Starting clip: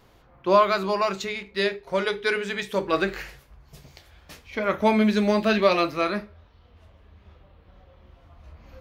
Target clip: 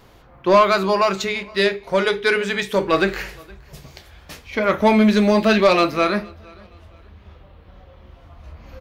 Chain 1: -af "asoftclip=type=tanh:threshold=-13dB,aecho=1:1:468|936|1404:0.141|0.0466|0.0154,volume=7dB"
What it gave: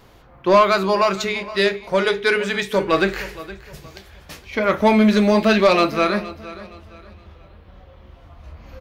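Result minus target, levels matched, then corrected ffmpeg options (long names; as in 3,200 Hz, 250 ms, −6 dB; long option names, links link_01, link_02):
echo-to-direct +9 dB
-af "asoftclip=type=tanh:threshold=-13dB,aecho=1:1:468|936:0.0501|0.0165,volume=7dB"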